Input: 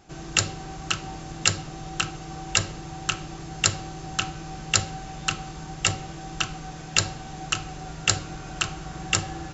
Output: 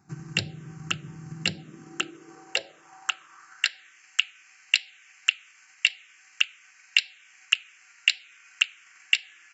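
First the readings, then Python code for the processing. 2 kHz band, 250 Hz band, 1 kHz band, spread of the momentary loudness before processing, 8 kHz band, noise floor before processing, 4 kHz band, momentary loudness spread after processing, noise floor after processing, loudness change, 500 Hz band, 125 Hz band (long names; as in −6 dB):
+2.5 dB, −8.0 dB, −12.0 dB, 13 LU, can't be measured, −39 dBFS, +1.0 dB, 15 LU, −57 dBFS, +0.5 dB, −9.0 dB, −10.0 dB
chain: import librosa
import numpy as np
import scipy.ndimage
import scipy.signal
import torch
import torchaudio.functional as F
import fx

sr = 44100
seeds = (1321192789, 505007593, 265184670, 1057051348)

y = fx.transient(x, sr, attack_db=7, sustain_db=-2)
y = fx.env_phaser(y, sr, low_hz=550.0, high_hz=1200.0, full_db=-15.5)
y = fx.filter_sweep_highpass(y, sr, from_hz=140.0, to_hz=2300.0, start_s=1.27, end_s=4.03, q=2.8)
y = y * 10.0 ** (-7.0 / 20.0)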